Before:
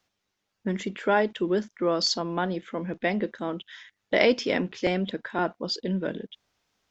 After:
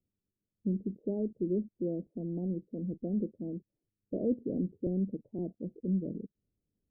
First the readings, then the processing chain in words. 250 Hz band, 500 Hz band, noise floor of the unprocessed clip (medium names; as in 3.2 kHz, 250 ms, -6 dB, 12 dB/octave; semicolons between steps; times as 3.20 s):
-3.5 dB, -11.0 dB, -81 dBFS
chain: Gaussian low-pass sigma 24 samples